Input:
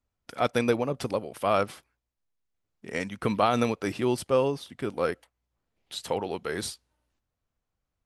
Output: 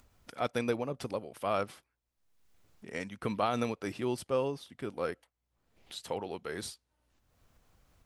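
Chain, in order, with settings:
upward compression, threshold −38 dBFS
level −7 dB

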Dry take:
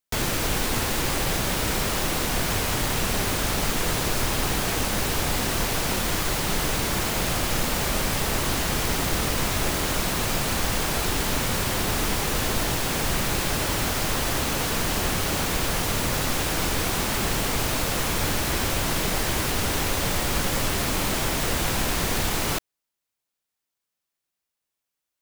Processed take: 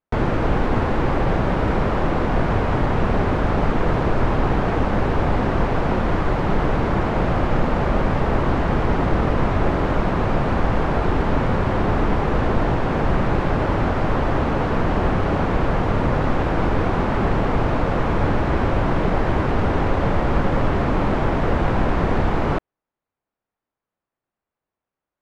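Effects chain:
low-pass filter 1,200 Hz 12 dB per octave
level +8 dB

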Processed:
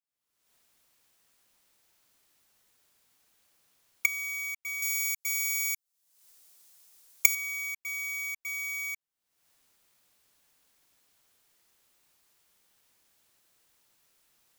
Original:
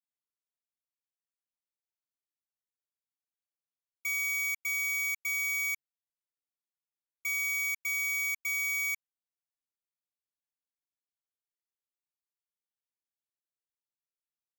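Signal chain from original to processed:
camcorder AGC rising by 57 dB per second
0:04.82–0:07.35: bass and treble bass −6 dB, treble +11 dB
level −3.5 dB

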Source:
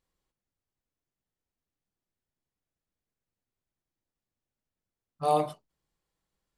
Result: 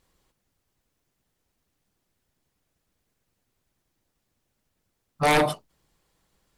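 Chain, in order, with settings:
harmonic and percussive parts rebalanced harmonic −4 dB
sine wavefolder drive 12 dB, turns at −15.5 dBFS

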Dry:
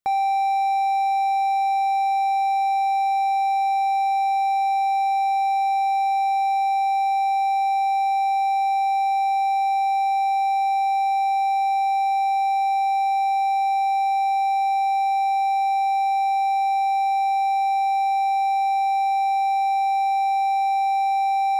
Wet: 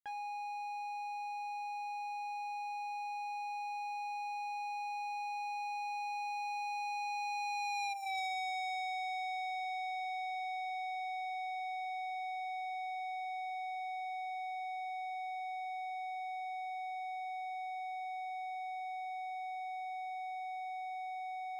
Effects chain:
source passing by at 0:08.02, 17 m/s, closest 3.3 metres
gain on a spectral selection 0:07.94–0:08.18, 770–5,400 Hz −18 dB
on a send at −12 dB: convolution reverb RT60 0.90 s, pre-delay 3 ms
on the sum: downward compressor 4 to 1, threshold −56 dBFS, peak gain reduction 27.5 dB
saturating transformer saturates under 2,300 Hz
level +17 dB

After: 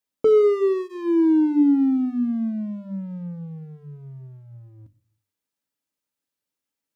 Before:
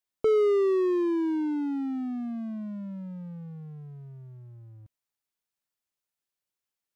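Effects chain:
parametric band 290 Hz +10.5 dB 0.93 octaves
mains-hum notches 50/100/150/200/250/300/350/400 Hz
notch comb filter 360 Hz
on a send: convolution reverb, pre-delay 6 ms, DRR 16.5 dB
on the sum: level +3 dB

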